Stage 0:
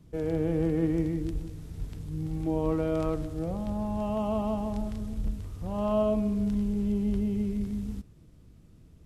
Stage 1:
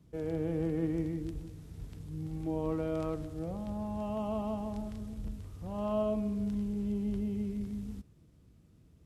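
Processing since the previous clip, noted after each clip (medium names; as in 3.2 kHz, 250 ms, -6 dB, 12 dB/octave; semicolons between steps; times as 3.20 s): high-pass 48 Hz; trim -5.5 dB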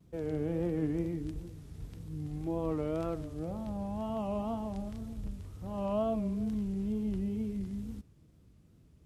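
wow and flutter 100 cents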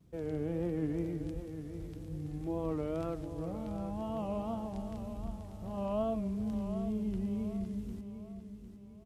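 feedback delay 753 ms, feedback 40%, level -10 dB; trim -2 dB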